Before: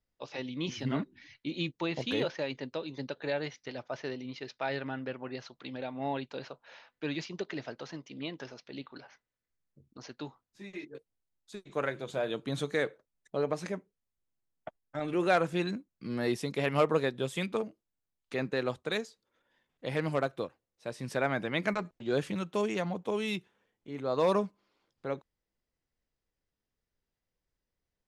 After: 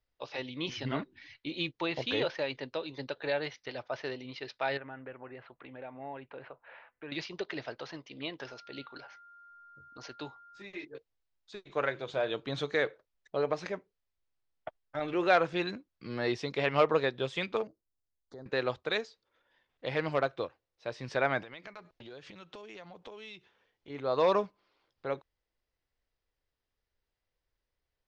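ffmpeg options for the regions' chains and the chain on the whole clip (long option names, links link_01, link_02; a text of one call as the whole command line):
ffmpeg -i in.wav -filter_complex "[0:a]asettb=1/sr,asplit=3[link_01][link_02][link_03];[link_01]atrim=end=4.774[link_04];[link_02]atrim=start=4.77:end=7.12,asetpts=PTS-STARTPTS,afade=type=in:duration=0.004:curve=qsin,afade=type=out:start_time=2.346:duration=0.004:curve=qsin,acompressor=threshold=-45dB:ratio=2:attack=3.2:release=140:knee=1:detection=peak,lowpass=frequency=2400:width=0.5412,lowpass=frequency=2400:width=1.3066[link_05];[link_03]atrim=start=7.116[link_06];[link_04][link_05]acrossfade=duration=0.004:curve1=hsin:curve2=qsin[link_07];[link_07][link_06]acrossfade=duration=0.004:curve1=qsin:curve2=hsin,asettb=1/sr,asplit=3[link_08][link_09][link_10];[link_08]atrim=end=8.464[link_11];[link_09]atrim=start=8.46:end=10.62,asetpts=PTS-STARTPTS,afade=type=in:duration=0.004:curve=qsin,afade=type=out:start_time=2.156:duration=0.004:curve=qsin,equalizer=frequency=7700:width_type=o:width=0.44:gain=8.5,aeval=exprs='val(0)+0.00178*sin(2*PI*1400*n/s)':channel_layout=same[link_12];[link_10]atrim=start=10.616[link_13];[link_11][link_12]acrossfade=duration=0.004:curve1=hsin:curve2=qsin[link_14];[link_14][link_13]acrossfade=duration=0.004:curve1=qsin:curve2=hsin,asettb=1/sr,asplit=3[link_15][link_16][link_17];[link_15]atrim=end=17.674[link_18];[link_16]atrim=start=17.67:end=18.46,asetpts=PTS-STARTPTS,afade=type=in:duration=0.004:curve=qsin,afade=type=out:start_time=0.786:duration=0.004:curve=qsin,equalizer=frequency=2000:width=0.41:gain=-14,acompressor=threshold=-44dB:ratio=3:attack=3.2:release=140:knee=1:detection=peak,asuperstop=centerf=2600:order=4:qfactor=1.1[link_19];[link_17]atrim=start=18.456[link_20];[link_18][link_19]acrossfade=duration=0.004:curve1=hsin:curve2=qsin[link_21];[link_21][link_20]acrossfade=duration=0.004:curve1=qsin:curve2=hsin,asettb=1/sr,asplit=3[link_22][link_23][link_24];[link_22]atrim=end=21.424[link_25];[link_23]atrim=start=21.42:end=23.9,asetpts=PTS-STARTPTS,afade=type=in:duration=0.004:curve=qsin,afade=type=out:start_time=2.476:duration=0.004:curve=qsin,equalizer=frequency=5200:width=0.58:gain=4,acompressor=threshold=-43dB:ratio=16:attack=3.2:release=140:knee=1:detection=peak[link_26];[link_24]atrim=start=23.896[link_27];[link_25][link_26]acrossfade=duration=0.004:curve1=hsin:curve2=qsin[link_28];[link_28][link_27]acrossfade=duration=0.004:curve1=qsin:curve2=hsin,lowpass=frequency=5300:width=0.5412,lowpass=frequency=5300:width=1.3066,equalizer=frequency=200:width=1.1:gain=-9.5,volume=2.5dB" out.wav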